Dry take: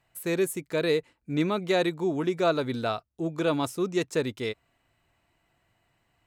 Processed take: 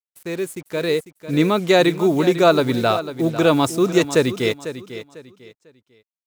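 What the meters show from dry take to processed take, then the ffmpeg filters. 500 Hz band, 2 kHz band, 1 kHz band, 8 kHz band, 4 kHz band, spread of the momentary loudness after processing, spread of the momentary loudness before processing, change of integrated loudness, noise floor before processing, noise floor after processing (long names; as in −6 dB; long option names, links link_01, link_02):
+9.0 dB, +9.0 dB, +10.0 dB, +8.5 dB, +10.0 dB, 14 LU, 7 LU, +9.5 dB, −74 dBFS, below −85 dBFS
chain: -filter_complex "[0:a]highpass=frequency=46:width=0.5412,highpass=frequency=46:width=1.3066,equalizer=frequency=12000:width=1.1:gain=-9.5,dynaudnorm=framelen=440:gausssize=5:maxgain=11.5dB,acrusher=bits=6:mix=0:aa=0.5,asplit=2[link_01][link_02];[link_02]aecho=0:1:498|996|1494:0.237|0.0664|0.0186[link_03];[link_01][link_03]amix=inputs=2:normalize=0,adynamicequalizer=threshold=0.01:dfrequency=5500:dqfactor=0.7:tfrequency=5500:tqfactor=0.7:attack=5:release=100:ratio=0.375:range=3:mode=boostabove:tftype=highshelf"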